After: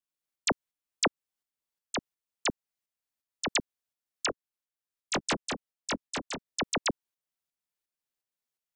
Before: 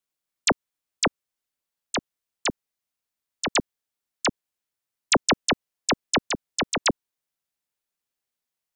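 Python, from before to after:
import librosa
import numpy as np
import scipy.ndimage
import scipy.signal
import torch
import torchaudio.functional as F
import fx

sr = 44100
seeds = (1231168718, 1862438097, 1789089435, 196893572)

y = fx.tremolo_shape(x, sr, shape='saw_up', hz=2.8, depth_pct=50)
y = fx.detune_double(y, sr, cents=43, at=(4.26, 6.45))
y = y * librosa.db_to_amplitude(-3.5)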